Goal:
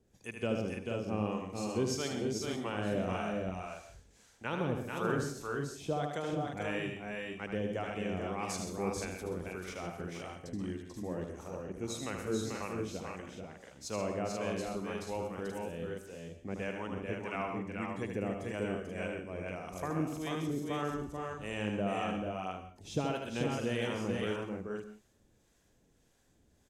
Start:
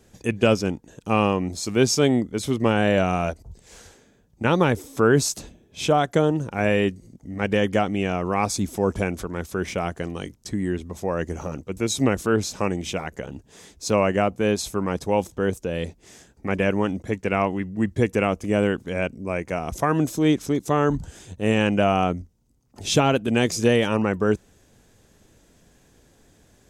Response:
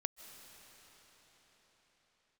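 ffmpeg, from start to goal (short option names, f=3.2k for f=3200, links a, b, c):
-filter_complex "[0:a]acrossover=split=660[a][b];[a]aeval=exprs='val(0)*(1-0.7/2+0.7/2*cos(2*PI*1.7*n/s))':c=same[c];[b]aeval=exprs='val(0)*(1-0.7/2-0.7/2*cos(2*PI*1.7*n/s))':c=same[d];[c][d]amix=inputs=2:normalize=0,aecho=1:1:76|130|439|482:0.501|0.316|0.596|0.531[e];[1:a]atrim=start_sample=2205,afade=t=out:st=0.38:d=0.01,atrim=end_sample=17199,asetrate=79380,aresample=44100[f];[e][f]afir=irnorm=-1:irlink=0,volume=-6dB"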